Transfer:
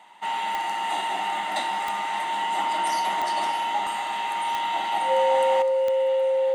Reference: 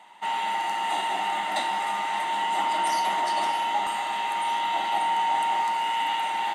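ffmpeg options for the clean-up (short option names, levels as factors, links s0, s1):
-af "adeclick=t=4,bandreject=f=530:w=30,asetnsamples=n=441:p=0,asendcmd='5.62 volume volume 11dB',volume=1"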